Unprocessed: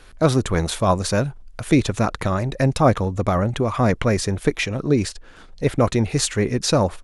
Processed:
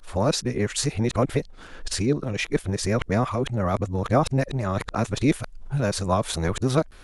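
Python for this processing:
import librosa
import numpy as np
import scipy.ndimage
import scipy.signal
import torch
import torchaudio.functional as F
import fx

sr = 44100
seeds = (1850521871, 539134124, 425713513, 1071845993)

y = x[::-1].copy()
y = fx.recorder_agc(y, sr, target_db=-13.5, rise_db_per_s=25.0, max_gain_db=30)
y = y * librosa.db_to_amplitude(-4.5)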